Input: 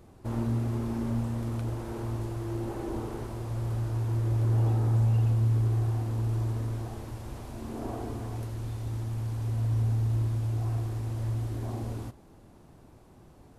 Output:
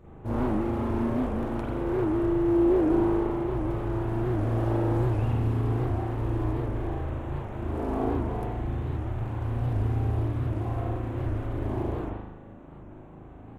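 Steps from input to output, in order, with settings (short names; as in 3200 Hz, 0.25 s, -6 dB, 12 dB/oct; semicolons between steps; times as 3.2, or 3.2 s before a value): Wiener smoothing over 9 samples; spring tank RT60 1 s, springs 38 ms, chirp 65 ms, DRR -7.5 dB; record warp 78 rpm, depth 160 cents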